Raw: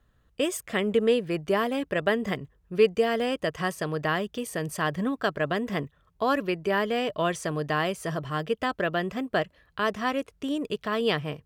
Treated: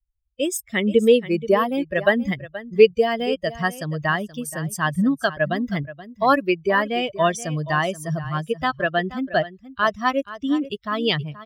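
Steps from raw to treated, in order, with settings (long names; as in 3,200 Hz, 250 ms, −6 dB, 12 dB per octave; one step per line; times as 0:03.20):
spectral dynamics exaggerated over time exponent 2
automatic gain control gain up to 9.5 dB
on a send: single-tap delay 477 ms −15.5 dB
on the sum: level +1.5 dB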